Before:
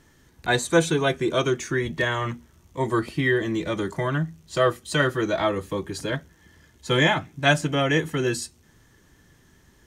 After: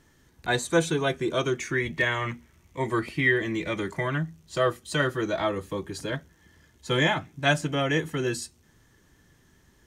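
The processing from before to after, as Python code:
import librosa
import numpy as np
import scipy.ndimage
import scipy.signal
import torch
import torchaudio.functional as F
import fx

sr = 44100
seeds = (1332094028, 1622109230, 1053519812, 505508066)

y = fx.peak_eq(x, sr, hz=2200.0, db=9.5, octaves=0.52, at=(1.58, 4.21))
y = y * librosa.db_to_amplitude(-3.5)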